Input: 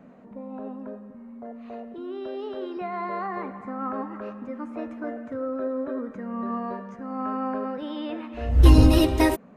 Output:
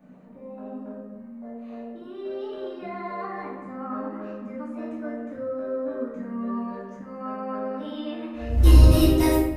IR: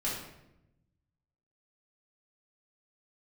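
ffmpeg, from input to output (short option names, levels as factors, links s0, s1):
-filter_complex "[0:a]highshelf=f=6800:g=11.5[s0];[1:a]atrim=start_sample=2205[s1];[s0][s1]afir=irnorm=-1:irlink=0,volume=0.398"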